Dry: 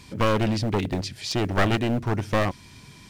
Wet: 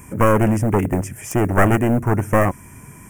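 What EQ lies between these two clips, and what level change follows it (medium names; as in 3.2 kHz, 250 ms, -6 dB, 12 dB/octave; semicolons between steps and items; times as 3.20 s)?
Butterworth band-stop 4.1 kHz, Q 0.65; treble shelf 6 kHz +10.5 dB; +7.0 dB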